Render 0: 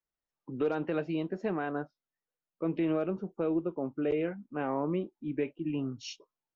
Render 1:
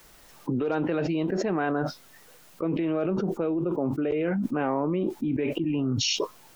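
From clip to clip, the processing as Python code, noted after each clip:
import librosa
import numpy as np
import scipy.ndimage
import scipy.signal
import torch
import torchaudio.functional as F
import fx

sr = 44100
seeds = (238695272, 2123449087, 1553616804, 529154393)

y = fx.env_flatten(x, sr, amount_pct=100)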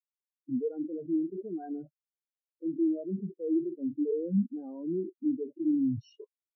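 y = fx.spectral_expand(x, sr, expansion=4.0)
y = y * librosa.db_to_amplitude(-5.0)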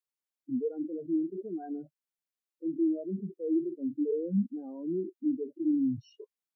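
y = scipy.signal.sosfilt(scipy.signal.butter(2, 140.0, 'highpass', fs=sr, output='sos'), x)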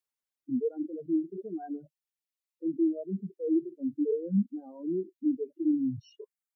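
y = fx.dereverb_blind(x, sr, rt60_s=1.7)
y = y * librosa.db_to_amplitude(2.0)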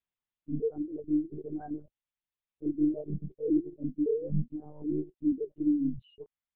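y = fx.lpc_monotone(x, sr, seeds[0], pitch_hz=150.0, order=8)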